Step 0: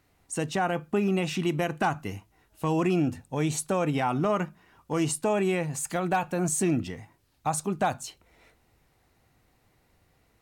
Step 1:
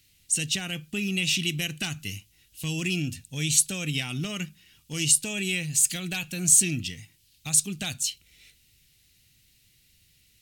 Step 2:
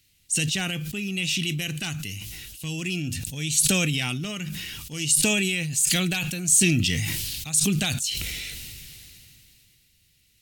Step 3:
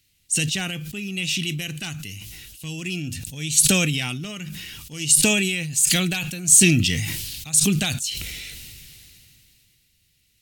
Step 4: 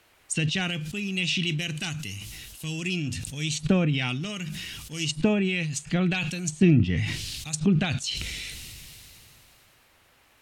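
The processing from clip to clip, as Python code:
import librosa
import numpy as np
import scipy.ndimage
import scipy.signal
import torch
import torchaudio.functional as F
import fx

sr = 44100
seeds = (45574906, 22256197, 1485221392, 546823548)

y1 = fx.curve_eq(x, sr, hz=(150.0, 970.0, 2900.0), db=(0, -22, 12))
y2 = fx.sustainer(y1, sr, db_per_s=20.0)
y2 = y2 * librosa.db_to_amplitude(-1.5)
y3 = fx.upward_expand(y2, sr, threshold_db=-31.0, expansion=1.5)
y3 = y3 * librosa.db_to_amplitude(6.0)
y4 = fx.dmg_noise_band(y3, sr, seeds[0], low_hz=230.0, high_hz=2900.0, level_db=-63.0)
y4 = fx.env_lowpass_down(y4, sr, base_hz=1200.0, full_db=-15.5)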